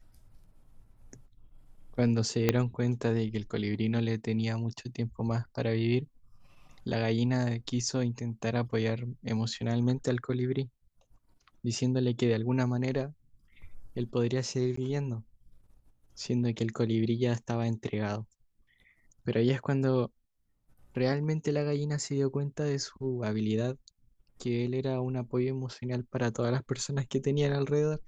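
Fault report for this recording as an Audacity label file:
2.490000	2.490000	pop -9 dBFS
14.760000	14.770000	dropout 14 ms

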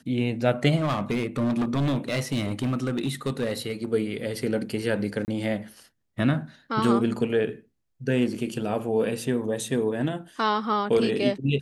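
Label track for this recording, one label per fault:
0.760000	3.850000	clipped -21 dBFS
5.250000	5.280000	dropout 29 ms

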